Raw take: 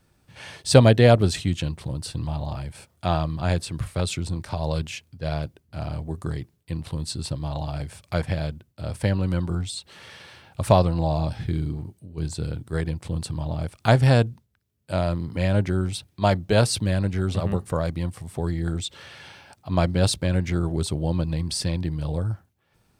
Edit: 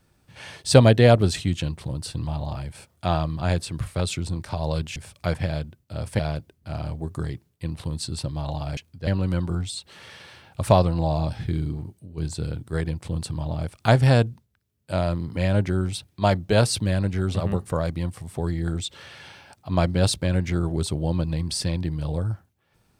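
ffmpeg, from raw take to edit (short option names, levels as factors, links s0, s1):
-filter_complex "[0:a]asplit=5[s0][s1][s2][s3][s4];[s0]atrim=end=4.962[s5];[s1]atrim=start=7.838:end=9.072[s6];[s2]atrim=start=5.258:end=7.842[s7];[s3]atrim=start=4.958:end=5.262[s8];[s4]atrim=start=9.068[s9];[s5][s6]acrossfade=d=0.004:c1=hsin:c2=hsin[s10];[s10][s7]acrossfade=d=0.004:c1=hsin:c2=hsin[s11];[s11][s8]acrossfade=d=0.004:c1=hsin:c2=hsin[s12];[s12][s9]acrossfade=d=0.004:c1=hsin:c2=hsin"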